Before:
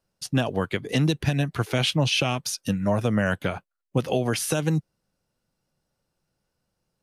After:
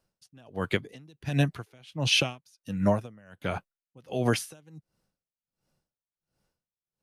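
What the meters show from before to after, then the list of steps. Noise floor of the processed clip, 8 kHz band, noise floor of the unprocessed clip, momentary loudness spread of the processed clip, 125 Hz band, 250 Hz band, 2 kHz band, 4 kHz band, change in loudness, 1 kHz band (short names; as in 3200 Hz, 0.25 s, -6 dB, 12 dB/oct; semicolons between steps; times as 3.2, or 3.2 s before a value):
under -85 dBFS, -6.5 dB, -80 dBFS, 18 LU, -6.5 dB, -6.0 dB, -4.0 dB, -3.0 dB, -3.5 dB, -5.5 dB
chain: dB-linear tremolo 1.4 Hz, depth 33 dB; gain +1.5 dB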